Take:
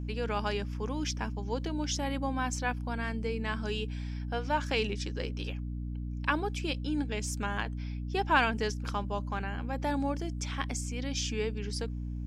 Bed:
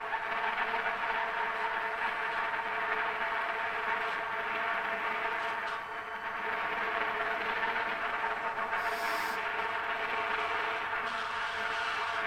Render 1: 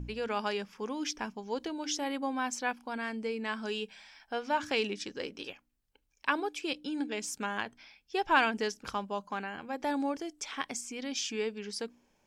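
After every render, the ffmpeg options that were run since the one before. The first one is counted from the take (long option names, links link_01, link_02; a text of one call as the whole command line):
ffmpeg -i in.wav -af "bandreject=frequency=60:width_type=h:width=4,bandreject=frequency=120:width_type=h:width=4,bandreject=frequency=180:width_type=h:width=4,bandreject=frequency=240:width_type=h:width=4,bandreject=frequency=300:width_type=h:width=4" out.wav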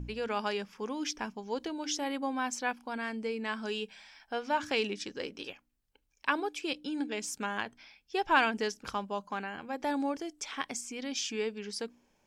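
ffmpeg -i in.wav -af anull out.wav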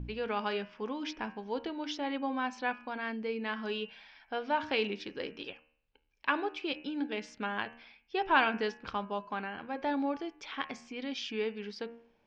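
ffmpeg -i in.wav -af "lowpass=frequency=4100:width=0.5412,lowpass=frequency=4100:width=1.3066,bandreject=frequency=77.4:width_type=h:width=4,bandreject=frequency=154.8:width_type=h:width=4,bandreject=frequency=232.2:width_type=h:width=4,bandreject=frequency=309.6:width_type=h:width=4,bandreject=frequency=387:width_type=h:width=4,bandreject=frequency=464.4:width_type=h:width=4,bandreject=frequency=541.8:width_type=h:width=4,bandreject=frequency=619.2:width_type=h:width=4,bandreject=frequency=696.6:width_type=h:width=4,bandreject=frequency=774:width_type=h:width=4,bandreject=frequency=851.4:width_type=h:width=4,bandreject=frequency=928.8:width_type=h:width=4,bandreject=frequency=1006.2:width_type=h:width=4,bandreject=frequency=1083.6:width_type=h:width=4,bandreject=frequency=1161:width_type=h:width=4,bandreject=frequency=1238.4:width_type=h:width=4,bandreject=frequency=1315.8:width_type=h:width=4,bandreject=frequency=1393.2:width_type=h:width=4,bandreject=frequency=1470.6:width_type=h:width=4,bandreject=frequency=1548:width_type=h:width=4,bandreject=frequency=1625.4:width_type=h:width=4,bandreject=frequency=1702.8:width_type=h:width=4,bandreject=frequency=1780.2:width_type=h:width=4,bandreject=frequency=1857.6:width_type=h:width=4,bandreject=frequency=1935:width_type=h:width=4,bandreject=frequency=2012.4:width_type=h:width=4,bandreject=frequency=2089.8:width_type=h:width=4,bandreject=frequency=2167.2:width_type=h:width=4,bandreject=frequency=2244.6:width_type=h:width=4,bandreject=frequency=2322:width_type=h:width=4,bandreject=frequency=2399.4:width_type=h:width=4,bandreject=frequency=2476.8:width_type=h:width=4,bandreject=frequency=2554.2:width_type=h:width=4,bandreject=frequency=2631.6:width_type=h:width=4,bandreject=frequency=2709:width_type=h:width=4,bandreject=frequency=2786.4:width_type=h:width=4,bandreject=frequency=2863.8:width_type=h:width=4,bandreject=frequency=2941.2:width_type=h:width=4,bandreject=frequency=3018.6:width_type=h:width=4" out.wav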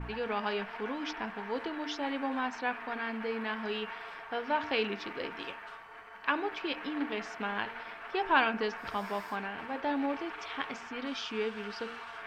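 ffmpeg -i in.wav -i bed.wav -filter_complex "[1:a]volume=-11dB[link_01];[0:a][link_01]amix=inputs=2:normalize=0" out.wav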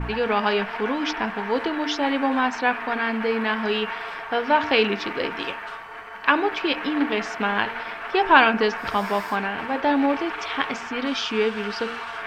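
ffmpeg -i in.wav -af "volume=11.5dB,alimiter=limit=-1dB:level=0:latency=1" out.wav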